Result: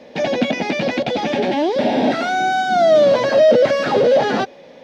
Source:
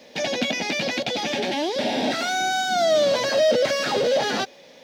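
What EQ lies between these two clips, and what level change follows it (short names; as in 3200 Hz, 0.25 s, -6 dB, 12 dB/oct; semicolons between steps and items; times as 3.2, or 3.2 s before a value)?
LPF 1100 Hz 6 dB/oct; +8.5 dB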